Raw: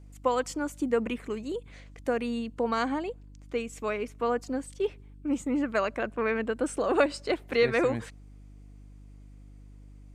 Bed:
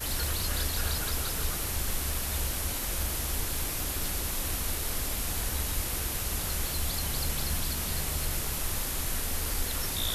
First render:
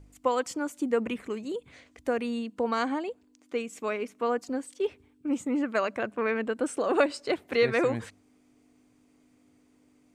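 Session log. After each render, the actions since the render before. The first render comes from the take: de-hum 50 Hz, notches 4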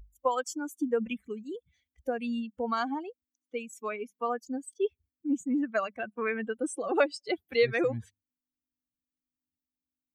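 expander on every frequency bin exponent 2; in parallel at -2 dB: compression, threshold -37 dBFS, peak gain reduction 15.5 dB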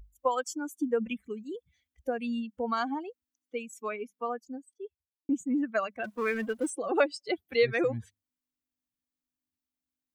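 3.86–5.29 s: studio fade out; 6.04–6.70 s: companding laws mixed up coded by mu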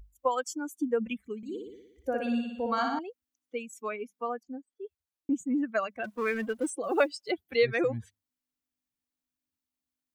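1.37–2.99 s: flutter echo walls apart 10.1 m, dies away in 0.88 s; 4.43–4.85 s: low-pass 2.6 kHz; 6.83–7.31 s: companded quantiser 8-bit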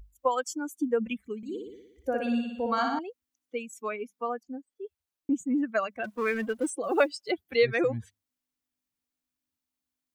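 trim +1.5 dB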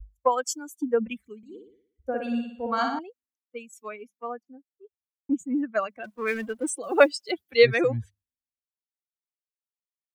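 three bands expanded up and down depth 100%

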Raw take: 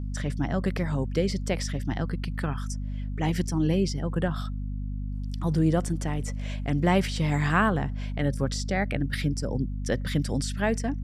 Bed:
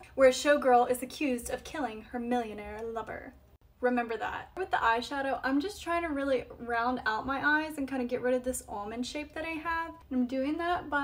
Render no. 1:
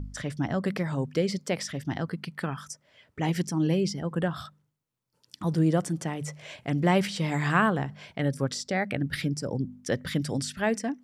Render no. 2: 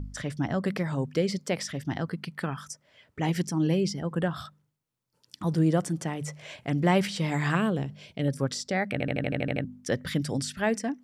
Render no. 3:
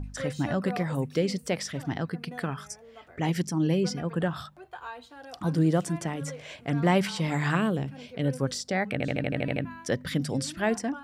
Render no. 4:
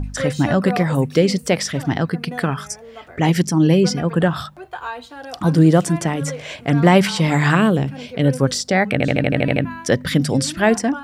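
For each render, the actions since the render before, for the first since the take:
de-hum 50 Hz, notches 5
7.55–8.28 s: high-order bell 1.2 kHz -10 dB; 8.92 s: stutter in place 0.08 s, 9 plays
add bed -13.5 dB
trim +11 dB; peak limiter -2 dBFS, peak gain reduction 2 dB

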